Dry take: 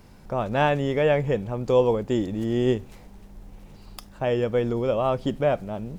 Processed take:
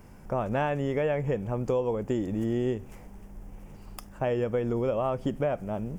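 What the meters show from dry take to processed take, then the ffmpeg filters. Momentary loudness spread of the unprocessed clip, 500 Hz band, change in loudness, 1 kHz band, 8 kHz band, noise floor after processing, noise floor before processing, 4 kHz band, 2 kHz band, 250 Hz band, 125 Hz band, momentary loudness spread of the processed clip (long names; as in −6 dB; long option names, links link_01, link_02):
7 LU, −5.5 dB, −5.0 dB, −5.5 dB, can't be measured, −48 dBFS, −48 dBFS, −10.5 dB, −6.5 dB, −3.5 dB, −3.5 dB, 20 LU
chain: -af "equalizer=frequency=4000:width=2.8:gain=-15,acompressor=threshold=-24dB:ratio=6"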